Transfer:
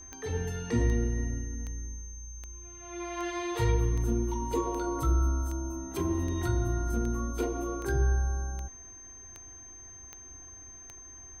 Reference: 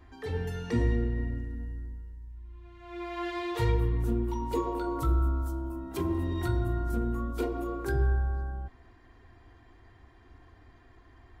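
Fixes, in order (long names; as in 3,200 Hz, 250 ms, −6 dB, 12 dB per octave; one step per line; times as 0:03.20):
click removal
notch filter 6,300 Hz, Q 30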